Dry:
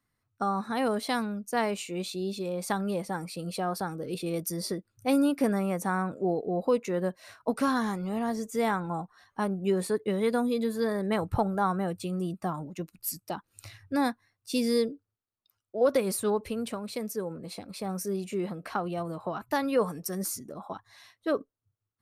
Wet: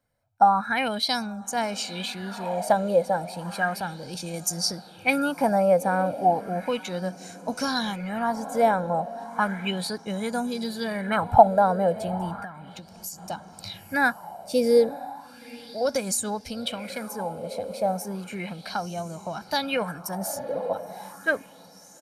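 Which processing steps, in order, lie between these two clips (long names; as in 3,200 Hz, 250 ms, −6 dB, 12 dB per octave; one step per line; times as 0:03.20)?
feedback delay with all-pass diffusion 911 ms, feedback 43%, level −15 dB
0:12.35–0:13.18: downward compressor 16 to 1, threshold −38 dBFS, peak gain reduction 13 dB
comb filter 1.3 ms, depth 62%
auto-filter bell 0.34 Hz 510–6,900 Hz +17 dB
level −1 dB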